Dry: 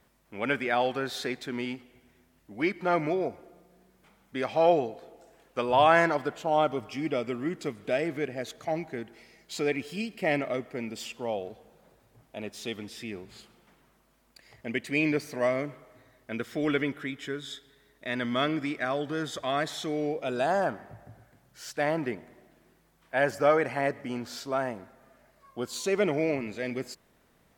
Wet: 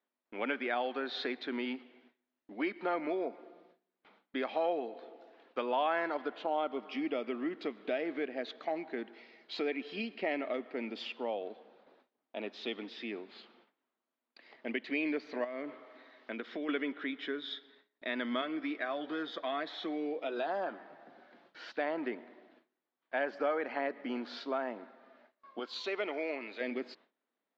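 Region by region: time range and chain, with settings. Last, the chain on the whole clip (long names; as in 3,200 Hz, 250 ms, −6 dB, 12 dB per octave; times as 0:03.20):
0:15.44–0:16.69: downward compressor 10 to 1, threshold −32 dBFS + one half of a high-frequency compander encoder only
0:18.41–0:21.72: flanger 1.4 Hz, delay 5.3 ms, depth 1.1 ms, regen −46% + multiband upward and downward compressor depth 40%
0:25.59–0:26.61: high-pass filter 790 Hz 6 dB per octave + high-shelf EQ 10,000 Hz +5.5 dB
whole clip: elliptic band-pass filter 250–4,000 Hz, stop band 40 dB; noise gate with hold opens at −52 dBFS; downward compressor 2.5 to 1, threshold −33 dBFS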